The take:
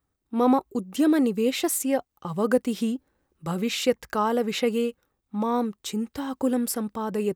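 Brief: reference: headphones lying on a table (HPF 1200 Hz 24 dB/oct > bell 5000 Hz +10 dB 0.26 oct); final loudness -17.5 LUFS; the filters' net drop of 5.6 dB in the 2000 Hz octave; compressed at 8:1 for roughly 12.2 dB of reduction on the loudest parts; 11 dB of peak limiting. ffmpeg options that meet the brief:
-af "equalizer=f=2k:t=o:g=-7.5,acompressor=threshold=-29dB:ratio=8,alimiter=level_in=7.5dB:limit=-24dB:level=0:latency=1,volume=-7.5dB,highpass=f=1.2k:w=0.5412,highpass=f=1.2k:w=1.3066,equalizer=f=5k:t=o:w=0.26:g=10,volume=27dB"

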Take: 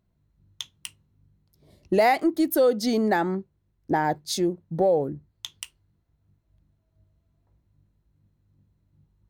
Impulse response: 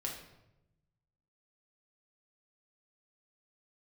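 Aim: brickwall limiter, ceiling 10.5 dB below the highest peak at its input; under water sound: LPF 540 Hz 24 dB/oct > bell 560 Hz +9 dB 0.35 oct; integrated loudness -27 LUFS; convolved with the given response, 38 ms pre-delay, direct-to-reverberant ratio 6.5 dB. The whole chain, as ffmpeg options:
-filter_complex "[0:a]alimiter=limit=-20dB:level=0:latency=1,asplit=2[a][b];[1:a]atrim=start_sample=2205,adelay=38[c];[b][c]afir=irnorm=-1:irlink=0,volume=-7.5dB[d];[a][d]amix=inputs=2:normalize=0,lowpass=f=540:w=0.5412,lowpass=f=540:w=1.3066,equalizer=f=560:t=o:w=0.35:g=9,volume=1dB"

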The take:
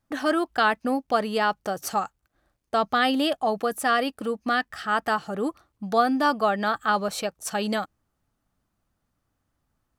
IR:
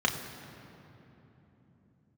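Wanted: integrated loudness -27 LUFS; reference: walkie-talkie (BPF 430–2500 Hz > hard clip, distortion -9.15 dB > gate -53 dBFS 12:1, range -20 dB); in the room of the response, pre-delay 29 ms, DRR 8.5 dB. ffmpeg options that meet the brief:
-filter_complex "[0:a]asplit=2[a][b];[1:a]atrim=start_sample=2205,adelay=29[c];[b][c]afir=irnorm=-1:irlink=0,volume=-19.5dB[d];[a][d]amix=inputs=2:normalize=0,highpass=430,lowpass=2.5k,asoftclip=type=hard:threshold=-22dB,agate=range=-20dB:threshold=-53dB:ratio=12,volume=2dB"

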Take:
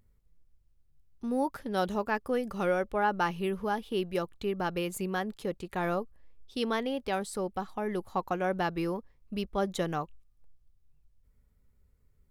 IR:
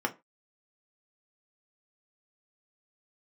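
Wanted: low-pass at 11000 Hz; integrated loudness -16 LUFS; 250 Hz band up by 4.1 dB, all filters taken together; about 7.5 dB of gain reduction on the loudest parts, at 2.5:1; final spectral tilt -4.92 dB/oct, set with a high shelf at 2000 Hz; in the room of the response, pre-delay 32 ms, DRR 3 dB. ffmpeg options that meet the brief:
-filter_complex "[0:a]lowpass=11k,equalizer=f=250:t=o:g=5.5,highshelf=f=2k:g=4,acompressor=threshold=-33dB:ratio=2.5,asplit=2[a][b];[1:a]atrim=start_sample=2205,adelay=32[c];[b][c]afir=irnorm=-1:irlink=0,volume=-11dB[d];[a][d]amix=inputs=2:normalize=0,volume=17.5dB"

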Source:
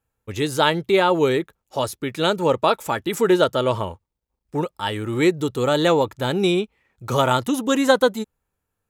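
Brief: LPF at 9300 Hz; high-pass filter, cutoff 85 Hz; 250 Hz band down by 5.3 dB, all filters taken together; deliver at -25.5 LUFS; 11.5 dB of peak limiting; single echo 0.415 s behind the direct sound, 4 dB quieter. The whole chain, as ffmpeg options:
-af "highpass=85,lowpass=9.3k,equalizer=f=250:t=o:g=-8,alimiter=limit=-14.5dB:level=0:latency=1,aecho=1:1:415:0.631"

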